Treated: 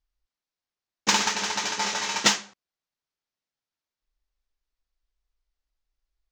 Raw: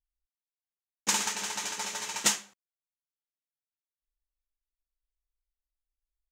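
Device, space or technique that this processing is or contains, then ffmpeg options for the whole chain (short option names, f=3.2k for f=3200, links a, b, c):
exciter from parts: -filter_complex "[0:a]lowpass=f=5.5k:w=0.5412,lowpass=f=5.5k:w=1.3066,asplit=2[a][b];[b]highpass=3.1k,asoftclip=type=tanh:threshold=-35dB,highpass=f=3.2k:p=1,volume=-4.5dB[c];[a][c]amix=inputs=2:normalize=0,asettb=1/sr,asplit=3[d][e][f];[d]atrim=end=1.774[g];[e]atrim=start=1.77:end=2.18,asetpts=PTS-STARTPTS,afade=t=in:d=0.004:c=qsin,afade=t=out:st=0.406:d=0.004:c=qsin,asplit=2[h][i];[i]adelay=25,volume=-4.5dB[j];[h][j]amix=inputs=2:normalize=0,atrim=end_sample=18081[k];[f]atrim=start=2.176[l];[g][k]acrossfade=d=0.004:c1=hsin:c2=qsin[m];[m][l]acrossfade=d=0.004:c1=qsin:c2=hsin,volume=8.5dB"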